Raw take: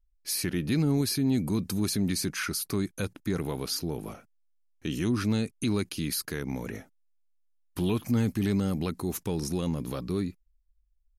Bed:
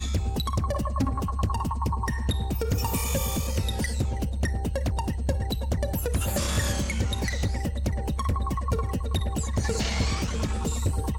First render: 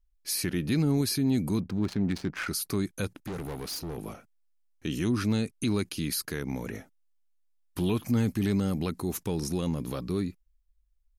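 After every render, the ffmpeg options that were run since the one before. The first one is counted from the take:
ffmpeg -i in.wav -filter_complex "[0:a]asettb=1/sr,asplit=3[link_01][link_02][link_03];[link_01]atrim=end=1.604[link_04];[link_02]atrim=start=1.6:end=2.48,asetpts=PTS-STARTPTS,afade=type=in:duration=0.004:curve=qsin,afade=type=out:start_time=0.876:duration=0.004:curve=qsin,adynamicsmooth=sensitivity=4.5:basefreq=750[link_05];[link_03]atrim=start=2.476[link_06];[link_04][link_05]acrossfade=duration=0.004:curve1=hsin:curve2=qsin[link_07];[link_07][link_06]acrossfade=duration=0.004:curve1=qsin:curve2=hsin,asettb=1/sr,asplit=3[link_08][link_09][link_10];[link_08]atrim=end=3.194[link_11];[link_09]atrim=start=3.19:end=3.98,asetpts=PTS-STARTPTS,afade=type=in:duration=0.004:curve=qsin,afade=type=out:start_time=0.786:duration=0.004:curve=qsin,asoftclip=type=hard:threshold=-33dB[link_12];[link_10]atrim=start=3.976[link_13];[link_11][link_12]acrossfade=duration=0.004:curve1=hsin:curve2=qsin[link_14];[link_14][link_13]acrossfade=duration=0.004:curve1=qsin:curve2=hsin" out.wav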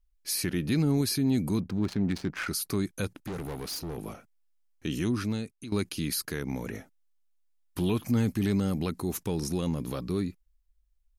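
ffmpeg -i in.wav -filter_complex "[0:a]asplit=2[link_01][link_02];[link_01]atrim=end=5.72,asetpts=PTS-STARTPTS,afade=type=out:start_time=4.99:duration=0.73:silence=0.158489[link_03];[link_02]atrim=start=5.72,asetpts=PTS-STARTPTS,afade=type=in:duration=0.004:curve=hsin:silence=0.158489[link_04];[link_03][link_04]concat=n=2:v=0:a=1" out.wav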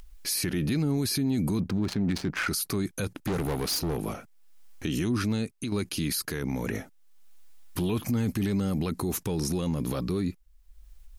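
ffmpeg -i in.wav -filter_complex "[0:a]asplit=2[link_01][link_02];[link_02]acompressor=mode=upward:threshold=-31dB:ratio=2.5,volume=0.5dB[link_03];[link_01][link_03]amix=inputs=2:normalize=0,alimiter=limit=-20dB:level=0:latency=1:release=16" out.wav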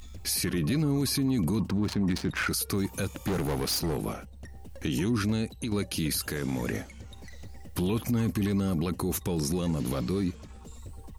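ffmpeg -i in.wav -i bed.wav -filter_complex "[1:a]volume=-19dB[link_01];[0:a][link_01]amix=inputs=2:normalize=0" out.wav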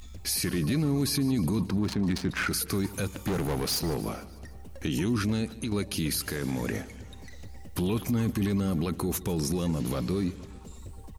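ffmpeg -i in.wav -af "aecho=1:1:149|298|447|596|745:0.119|0.0713|0.0428|0.0257|0.0154" out.wav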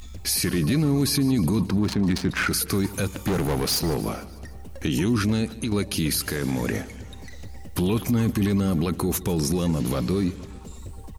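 ffmpeg -i in.wav -af "volume=5dB" out.wav

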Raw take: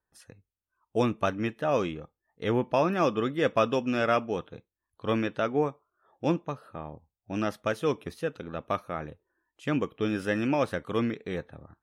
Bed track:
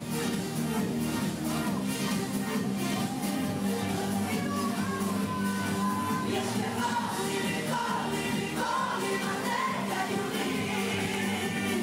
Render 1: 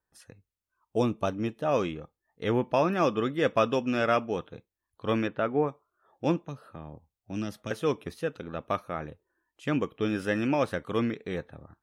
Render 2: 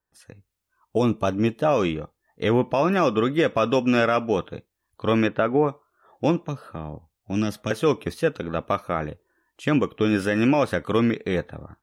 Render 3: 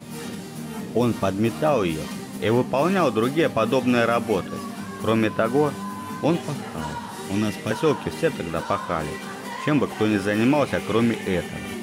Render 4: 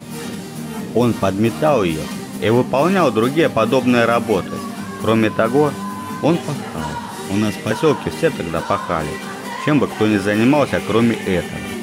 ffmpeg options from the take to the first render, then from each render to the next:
ffmpeg -i in.wav -filter_complex "[0:a]asettb=1/sr,asplit=3[link_01][link_02][link_03];[link_01]atrim=end=0.984[link_04];[link_02]atrim=start=0.98:end=1.66,asetpts=PTS-STARTPTS,afade=type=in:duration=0.004:curve=qsin,afade=type=out:start_time=0.676:duration=0.004:curve=qsin,equalizer=frequency=1800:width=1.3:gain=-9.5[link_05];[link_03]atrim=start=1.656[link_06];[link_04][link_05]acrossfade=duration=0.004:curve1=hsin:curve2=qsin[link_07];[link_07][link_06]acrossfade=duration=0.004:curve1=qsin:curve2=hsin,asplit=3[link_08][link_09][link_10];[link_08]afade=type=out:start_time=5.27:duration=0.02[link_11];[link_09]lowpass=2400,afade=type=in:start_time=5.27:duration=0.02,afade=type=out:start_time=5.67:duration=0.02[link_12];[link_10]afade=type=in:start_time=5.67:duration=0.02[link_13];[link_11][link_12][link_13]amix=inputs=3:normalize=0,asettb=1/sr,asplit=3[link_14][link_15][link_16];[link_14]atrim=end=6.434[link_17];[link_15]atrim=start=6.43:end=7.71,asetpts=PTS-STARTPTS,afade=type=in:duration=0.004:curve=qsin,afade=type=out:start_time=1.276:duration=0.004:curve=qsin,acrossover=split=320|3000[link_18][link_19][link_20];[link_19]acompressor=threshold=-44dB:ratio=3:attack=3.2:release=140:knee=2.83:detection=peak[link_21];[link_18][link_21][link_20]amix=inputs=3:normalize=0[link_22];[link_16]atrim=start=7.706[link_23];[link_17][link_22]acrossfade=duration=0.004:curve1=hsin:curve2=qsin[link_24];[link_24][link_23]acrossfade=duration=0.004:curve1=qsin:curve2=hsin" out.wav
ffmpeg -i in.wav -af "alimiter=limit=-19.5dB:level=0:latency=1:release=114,dynaudnorm=framelen=200:gausssize=3:maxgain=9dB" out.wav
ffmpeg -i in.wav -i bed.wav -filter_complex "[1:a]volume=-3dB[link_01];[0:a][link_01]amix=inputs=2:normalize=0" out.wav
ffmpeg -i in.wav -af "volume=5.5dB" out.wav

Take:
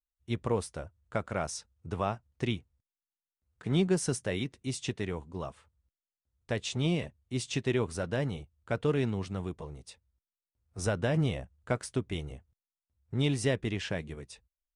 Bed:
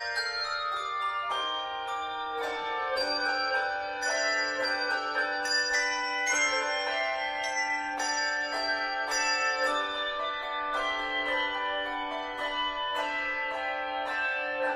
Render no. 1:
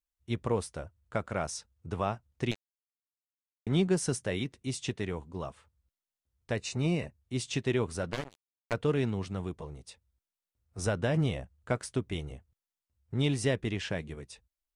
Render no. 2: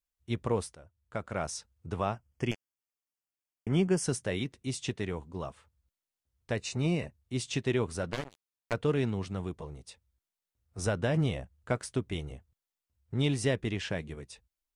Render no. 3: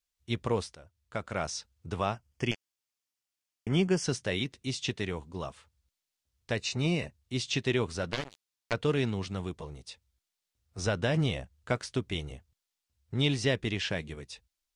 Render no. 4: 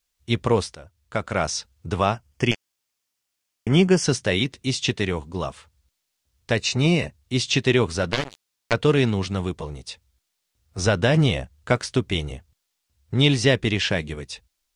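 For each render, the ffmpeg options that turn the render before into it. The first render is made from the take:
ffmpeg -i in.wav -filter_complex "[0:a]asettb=1/sr,asplit=3[link_01][link_02][link_03];[link_01]atrim=end=2.514[link_04];[link_02]atrim=start=2.51:end=3.67,asetpts=PTS-STARTPTS,afade=type=in:duration=0.004:curve=qsin,afade=type=out:start_time=1.156:duration=0.004:curve=qsin,acrusher=bits=3:mix=0:aa=0.5[link_05];[link_03]atrim=start=3.666[link_06];[link_04][link_05]acrossfade=duration=0.004:curve1=hsin:curve2=qsin[link_07];[link_07][link_06]acrossfade=duration=0.004:curve1=qsin:curve2=hsin,asettb=1/sr,asplit=3[link_08][link_09][link_10];[link_08]atrim=end=6.554[link_11];[link_09]atrim=start=6.55:end=7.21,asetpts=PTS-STARTPTS,afade=type=in:duration=0.004:curve=qsin,afade=type=out:start_time=0.656:duration=0.004:curve=qsin,asuperstop=centerf=3300:order=4:qfactor=4.1[link_12];[link_10]atrim=start=7.206[link_13];[link_11][link_12]acrossfade=duration=0.004:curve1=hsin:curve2=qsin[link_14];[link_14][link_13]acrossfade=duration=0.004:curve1=qsin:curve2=hsin,asplit=3[link_15][link_16][link_17];[link_15]afade=type=out:start_time=8.11:duration=0.02[link_18];[link_16]acrusher=bits=3:mix=0:aa=0.5,afade=type=in:start_time=8.11:duration=0.02,afade=type=out:start_time=8.72:duration=0.02[link_19];[link_17]afade=type=in:start_time=8.72:duration=0.02[link_20];[link_18][link_19][link_20]amix=inputs=3:normalize=0" out.wav
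ffmpeg -i in.wav -filter_complex "[0:a]asettb=1/sr,asplit=3[link_01][link_02][link_03];[link_01]atrim=end=2.144[link_04];[link_02]atrim=start=2.14:end=4.04,asetpts=PTS-STARTPTS,afade=type=in:duration=0.004:curve=qsin,afade=type=out:start_time=1.896:duration=0.004:curve=qsin,asuperstop=centerf=3900:order=12:qfactor=3.9[link_05];[link_03]atrim=start=4.036[link_06];[link_04][link_05]acrossfade=duration=0.004:curve1=hsin:curve2=qsin[link_07];[link_07][link_06]acrossfade=duration=0.004:curve1=qsin:curve2=hsin,asplit=2[link_08][link_09];[link_08]atrim=end=0.75,asetpts=PTS-STARTPTS,afade=type=out:start_time=0.746:duration=0.004:curve=hsin:silence=0.158489[link_10];[link_09]atrim=start=0.75,asetpts=PTS-STARTPTS,afade=type=in:duration=0.73:silence=0.158489[link_11];[link_10][link_11]concat=n=2:v=0:a=1" out.wav
ffmpeg -i in.wav -filter_complex "[0:a]acrossover=split=6200[link_01][link_02];[link_02]acompressor=threshold=-58dB:ratio=4:attack=1:release=60[link_03];[link_01][link_03]amix=inputs=2:normalize=0,equalizer=frequency=4600:width=0.54:gain=7.5" out.wav
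ffmpeg -i in.wav -af "volume=9.5dB" out.wav

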